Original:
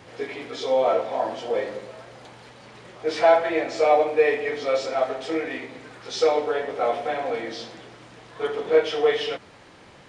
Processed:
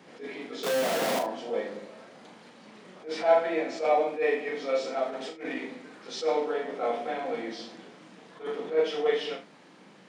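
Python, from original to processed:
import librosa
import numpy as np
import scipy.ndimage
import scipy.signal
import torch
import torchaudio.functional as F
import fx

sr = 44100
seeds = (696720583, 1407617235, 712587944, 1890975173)

y = fx.clip_1bit(x, sr, at=(0.63, 1.19))
y = scipy.signal.sosfilt(scipy.signal.butter(6, 180.0, 'highpass', fs=sr, output='sos'), y)
y = fx.bass_treble(y, sr, bass_db=11, treble_db=0)
y = fx.over_compress(y, sr, threshold_db=-29.0, ratio=-0.5, at=(5.09, 5.75))
y = fx.room_early_taps(y, sr, ms=(38, 74), db=(-6.0, -13.5))
y = fx.attack_slew(y, sr, db_per_s=180.0)
y = y * 10.0 ** (-7.0 / 20.0)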